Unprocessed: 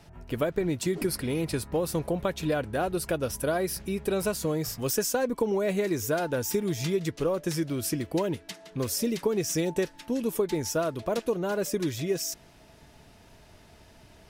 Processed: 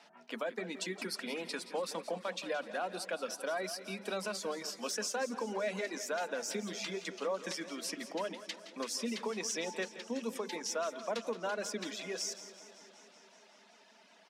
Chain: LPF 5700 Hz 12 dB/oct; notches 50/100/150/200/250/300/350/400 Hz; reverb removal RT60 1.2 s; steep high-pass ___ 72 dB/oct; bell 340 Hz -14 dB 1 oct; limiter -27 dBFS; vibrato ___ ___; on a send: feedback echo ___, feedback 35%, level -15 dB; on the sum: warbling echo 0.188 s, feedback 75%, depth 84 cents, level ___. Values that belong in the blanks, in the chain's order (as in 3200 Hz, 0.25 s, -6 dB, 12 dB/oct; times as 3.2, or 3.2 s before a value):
200 Hz, 7.3 Hz, 12 cents, 0.17 s, -17 dB